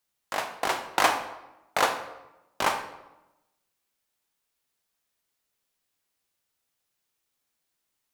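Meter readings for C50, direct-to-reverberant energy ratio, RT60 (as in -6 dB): 9.0 dB, 7.0 dB, 0.95 s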